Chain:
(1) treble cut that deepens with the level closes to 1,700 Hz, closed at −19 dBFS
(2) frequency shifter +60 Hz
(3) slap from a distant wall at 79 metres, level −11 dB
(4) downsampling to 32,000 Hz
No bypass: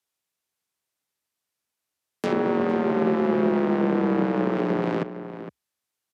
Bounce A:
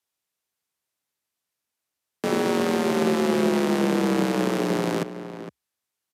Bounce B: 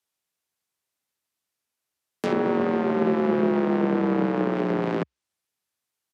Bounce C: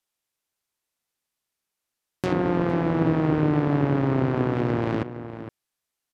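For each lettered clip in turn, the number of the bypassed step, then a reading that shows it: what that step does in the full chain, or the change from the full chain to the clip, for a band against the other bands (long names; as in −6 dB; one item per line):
1, 4 kHz band +10.5 dB
3, change in momentary loudness spread −7 LU
2, 125 Hz band +8.5 dB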